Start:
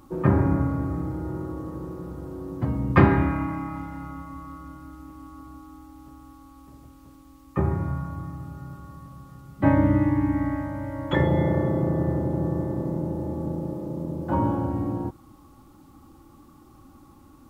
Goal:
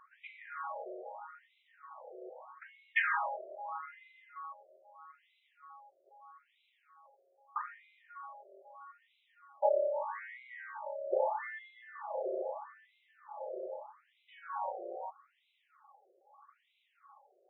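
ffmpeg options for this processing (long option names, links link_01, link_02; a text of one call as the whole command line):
ffmpeg -i in.wav -af "equalizer=frequency=460:width=5.3:gain=-5,afftfilt=real='re*between(b*sr/1024,510*pow(2900/510,0.5+0.5*sin(2*PI*0.79*pts/sr))/1.41,510*pow(2900/510,0.5+0.5*sin(2*PI*0.79*pts/sr))*1.41)':imag='im*between(b*sr/1024,510*pow(2900/510,0.5+0.5*sin(2*PI*0.79*pts/sr))/1.41,510*pow(2900/510,0.5+0.5*sin(2*PI*0.79*pts/sr))*1.41)':win_size=1024:overlap=0.75" out.wav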